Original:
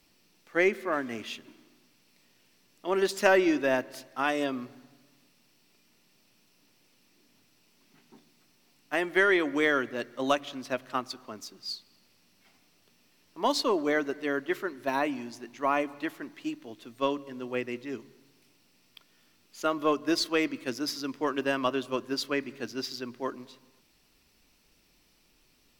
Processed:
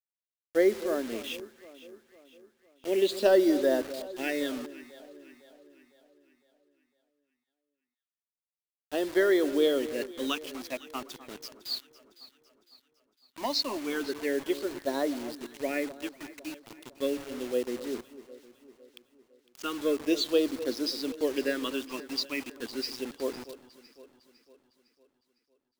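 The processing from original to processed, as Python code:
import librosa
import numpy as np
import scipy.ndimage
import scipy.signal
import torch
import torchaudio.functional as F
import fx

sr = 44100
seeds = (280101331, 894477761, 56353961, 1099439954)

y = fx.graphic_eq(x, sr, hz=(125, 250, 500, 1000, 2000, 4000), db=(-9, 6, 12, -6, 6, 11))
y = fx.leveller(y, sr, passes=1, at=(11.72, 13.46))
y = fx.phaser_stages(y, sr, stages=8, low_hz=440.0, high_hz=2600.0, hz=0.35, feedback_pct=5)
y = fx.quant_dither(y, sr, seeds[0], bits=6, dither='none')
y = fx.echo_alternate(y, sr, ms=253, hz=1300.0, feedback_pct=68, wet_db=-14)
y = F.gain(torch.from_numpy(y), -6.5).numpy()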